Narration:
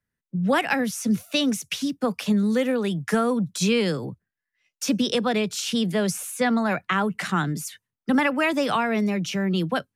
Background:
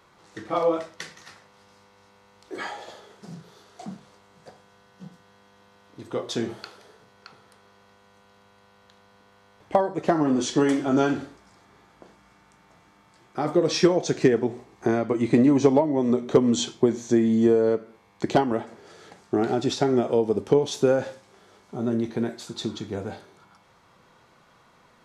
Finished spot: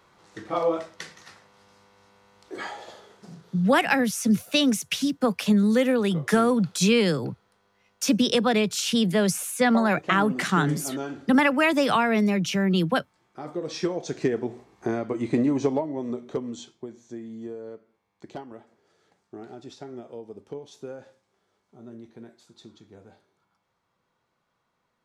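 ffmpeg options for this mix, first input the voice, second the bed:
-filter_complex "[0:a]adelay=3200,volume=1.5dB[a];[1:a]volume=5dB,afade=t=out:st=3:d=0.95:silence=0.334965,afade=t=in:st=13.55:d=0.96:silence=0.473151,afade=t=out:st=15.44:d=1.3:silence=0.211349[b];[a][b]amix=inputs=2:normalize=0"

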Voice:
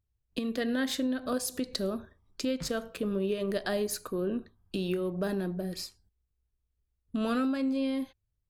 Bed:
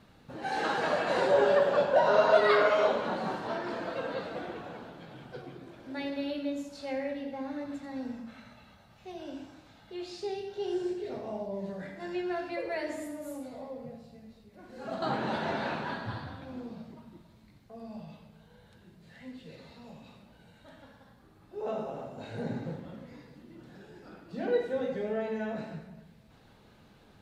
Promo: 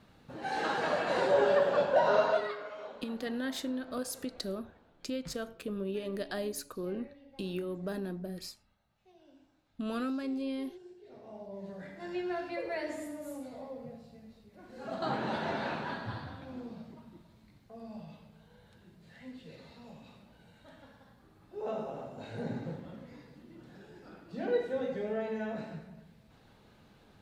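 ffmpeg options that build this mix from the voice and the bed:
-filter_complex "[0:a]adelay=2650,volume=-5.5dB[a];[1:a]volume=15dB,afade=t=out:st=2.14:d=0.41:silence=0.141254,afade=t=in:st=11.01:d=1.18:silence=0.141254[b];[a][b]amix=inputs=2:normalize=0"

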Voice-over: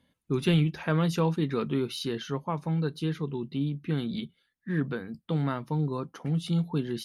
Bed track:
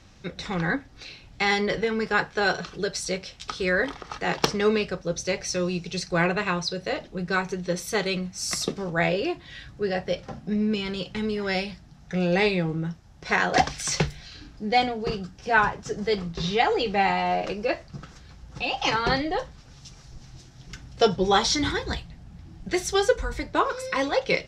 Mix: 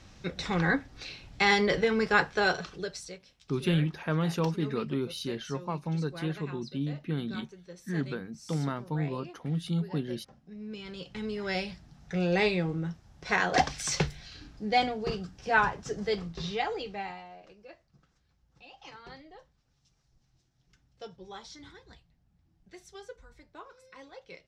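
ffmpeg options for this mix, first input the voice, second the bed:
-filter_complex "[0:a]adelay=3200,volume=-3dB[a];[1:a]volume=15.5dB,afade=t=out:st=2.21:d=0.99:silence=0.105925,afade=t=in:st=10.55:d=1.19:silence=0.158489,afade=t=out:st=15.92:d=1.37:silence=0.0944061[b];[a][b]amix=inputs=2:normalize=0"

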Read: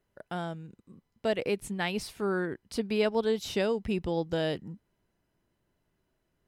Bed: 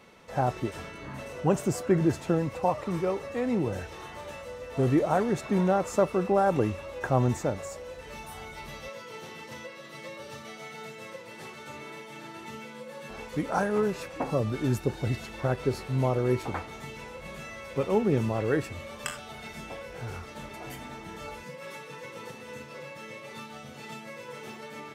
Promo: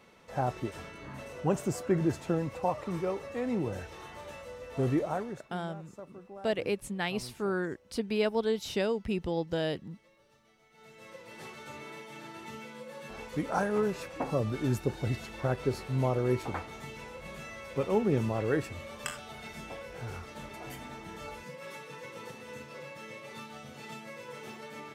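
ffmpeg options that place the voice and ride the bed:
-filter_complex "[0:a]adelay=5200,volume=-1.5dB[a];[1:a]volume=16.5dB,afade=t=out:st=4.89:d=0.6:silence=0.112202,afade=t=in:st=10.7:d=0.72:silence=0.0944061[b];[a][b]amix=inputs=2:normalize=0"

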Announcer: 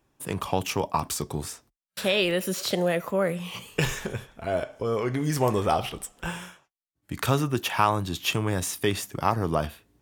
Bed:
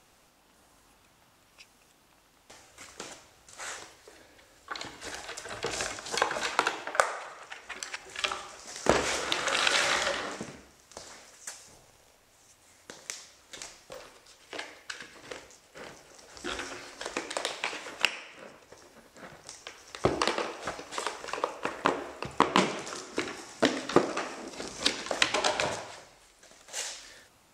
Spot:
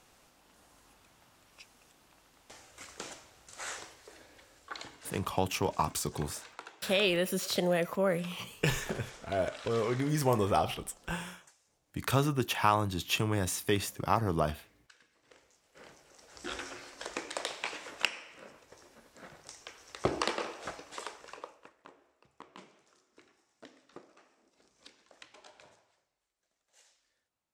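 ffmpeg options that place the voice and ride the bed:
-filter_complex "[0:a]adelay=4850,volume=-4dB[a];[1:a]volume=15.5dB,afade=t=out:st=4.39:d=0.92:silence=0.105925,afade=t=in:st=15.27:d=1.19:silence=0.149624,afade=t=out:st=20.54:d=1.19:silence=0.0595662[b];[a][b]amix=inputs=2:normalize=0"

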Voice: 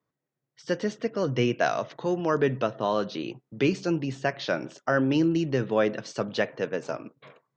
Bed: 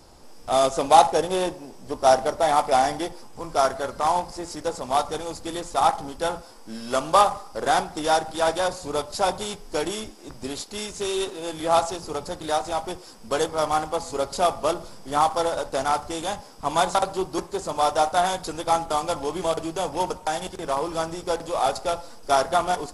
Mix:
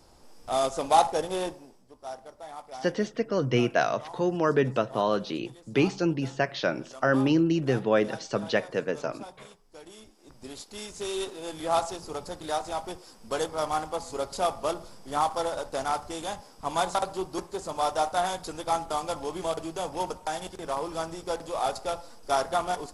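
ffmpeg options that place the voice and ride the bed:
-filter_complex "[0:a]adelay=2150,volume=0.5dB[a];[1:a]volume=10.5dB,afade=t=out:st=1.47:d=0.4:silence=0.158489,afade=t=in:st=9.82:d=1.31:silence=0.149624[b];[a][b]amix=inputs=2:normalize=0"

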